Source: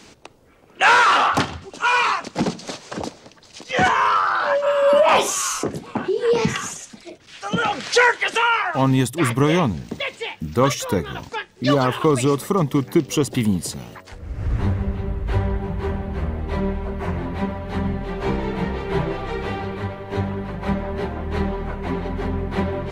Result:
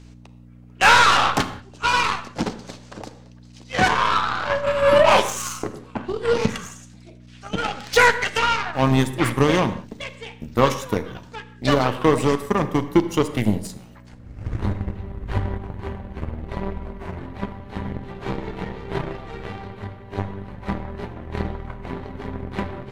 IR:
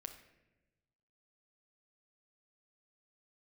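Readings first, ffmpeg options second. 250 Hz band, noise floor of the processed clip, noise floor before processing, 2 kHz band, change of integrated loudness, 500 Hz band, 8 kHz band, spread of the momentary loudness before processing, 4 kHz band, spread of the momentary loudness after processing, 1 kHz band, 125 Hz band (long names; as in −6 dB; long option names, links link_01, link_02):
−2.0 dB, −45 dBFS, −48 dBFS, −1.0 dB, −0.5 dB, −1.5 dB, −4.0 dB, 14 LU, +0.5 dB, 18 LU, −1.5 dB, −3.0 dB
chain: -filter_complex "[0:a]aeval=exprs='val(0)+0.0282*(sin(2*PI*60*n/s)+sin(2*PI*2*60*n/s)/2+sin(2*PI*3*60*n/s)/3+sin(2*PI*4*60*n/s)/4+sin(2*PI*5*60*n/s)/5)':channel_layout=same,aeval=exprs='0.668*(cos(1*acos(clip(val(0)/0.668,-1,1)))-cos(1*PI/2))+0.0841*(cos(3*acos(clip(val(0)/0.668,-1,1)))-cos(3*PI/2))+0.0266*(cos(5*acos(clip(val(0)/0.668,-1,1)))-cos(5*PI/2))+0.0106*(cos(6*acos(clip(val(0)/0.668,-1,1)))-cos(6*PI/2))+0.0596*(cos(7*acos(clip(val(0)/0.668,-1,1)))-cos(7*PI/2))':channel_layout=same,asplit=2[link_01][link_02];[1:a]atrim=start_sample=2205,afade=type=out:start_time=0.2:duration=0.01,atrim=end_sample=9261,asetrate=33957,aresample=44100[link_03];[link_02][link_03]afir=irnorm=-1:irlink=0,volume=8.5dB[link_04];[link_01][link_04]amix=inputs=2:normalize=0,volume=-6.5dB"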